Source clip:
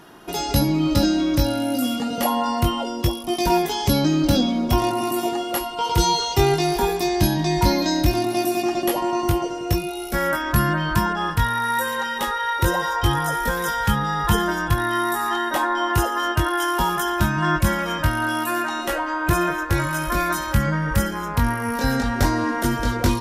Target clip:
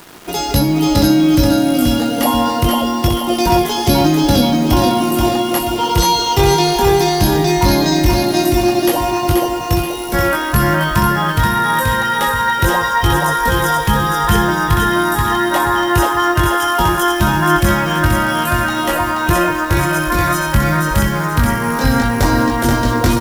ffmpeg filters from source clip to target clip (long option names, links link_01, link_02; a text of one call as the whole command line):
ffmpeg -i in.wav -af "acontrast=83,acrusher=bits=5:mix=0:aa=0.000001,aecho=1:1:480|960|1440|1920|2400:0.631|0.259|0.106|0.0435|0.0178,volume=-1dB" out.wav